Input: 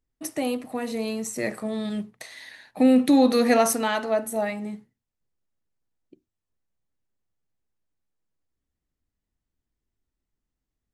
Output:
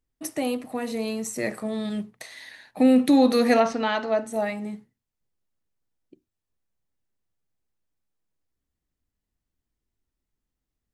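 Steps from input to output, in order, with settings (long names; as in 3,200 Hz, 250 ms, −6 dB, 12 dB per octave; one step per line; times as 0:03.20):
0:03.59–0:04.32: low-pass filter 4,000 Hz → 7,800 Hz 24 dB per octave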